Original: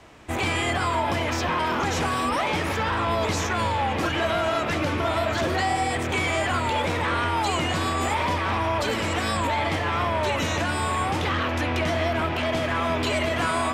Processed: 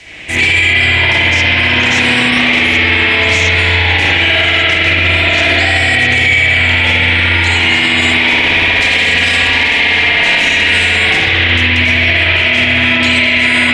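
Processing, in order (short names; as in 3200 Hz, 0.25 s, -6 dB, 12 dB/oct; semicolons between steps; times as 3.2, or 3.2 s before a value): 8.33–10.96 minimum comb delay 4.2 ms; LPF 10000 Hz 24 dB/oct; resonant high shelf 1600 Hz +10.5 dB, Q 3; spring tank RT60 3.7 s, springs 57 ms, chirp 25 ms, DRR -9.5 dB; maximiser +5.5 dB; gain -1 dB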